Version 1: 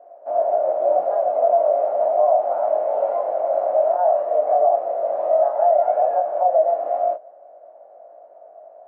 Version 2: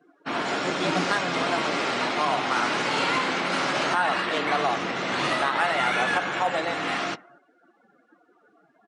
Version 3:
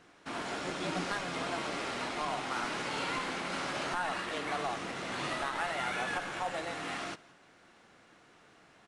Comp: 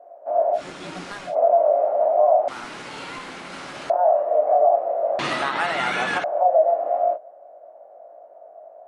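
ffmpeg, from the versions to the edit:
-filter_complex "[2:a]asplit=2[s0][s1];[0:a]asplit=4[s2][s3][s4][s5];[s2]atrim=end=0.62[s6];[s0]atrim=start=0.52:end=1.36[s7];[s3]atrim=start=1.26:end=2.482[s8];[s1]atrim=start=2.478:end=3.902[s9];[s4]atrim=start=3.898:end=5.192[s10];[1:a]atrim=start=5.188:end=6.242[s11];[s5]atrim=start=6.238[s12];[s6][s7]acrossfade=d=0.1:c1=tri:c2=tri[s13];[s13][s8]acrossfade=d=0.1:c1=tri:c2=tri[s14];[s14][s9]acrossfade=d=0.004:c1=hsin:c2=hsin[s15];[s15][s10]acrossfade=d=0.004:c1=hsin:c2=hsin[s16];[s16][s11]acrossfade=d=0.004:c1=hsin:c2=hsin[s17];[s17][s12]acrossfade=d=0.004:c1=hsin:c2=hsin"

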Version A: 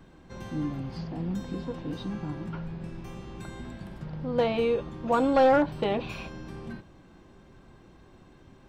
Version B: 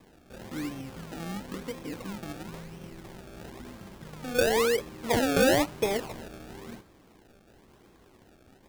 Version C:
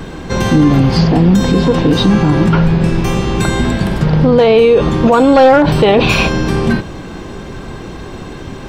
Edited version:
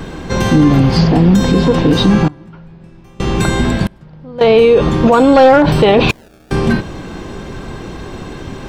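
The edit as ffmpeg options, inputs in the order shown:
-filter_complex "[0:a]asplit=2[s0][s1];[2:a]asplit=4[s2][s3][s4][s5];[s2]atrim=end=2.282[s6];[s0]atrim=start=2.278:end=3.202[s7];[s3]atrim=start=3.198:end=3.872[s8];[s1]atrim=start=3.868:end=4.412[s9];[s4]atrim=start=4.408:end=6.112[s10];[1:a]atrim=start=6.108:end=6.512[s11];[s5]atrim=start=6.508[s12];[s6][s7]acrossfade=d=0.004:c1=hsin:c2=hsin[s13];[s13][s8]acrossfade=d=0.004:c1=hsin:c2=hsin[s14];[s14][s9]acrossfade=d=0.004:c1=hsin:c2=hsin[s15];[s15][s10]acrossfade=d=0.004:c1=hsin:c2=hsin[s16];[s16][s11]acrossfade=d=0.004:c1=hsin:c2=hsin[s17];[s17][s12]acrossfade=d=0.004:c1=hsin:c2=hsin"

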